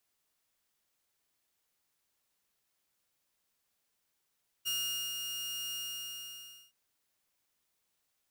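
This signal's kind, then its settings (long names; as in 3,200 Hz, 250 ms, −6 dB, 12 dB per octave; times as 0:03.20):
note with an ADSR envelope saw 2,840 Hz, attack 25 ms, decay 456 ms, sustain −5.5 dB, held 1.09 s, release 981 ms −28.5 dBFS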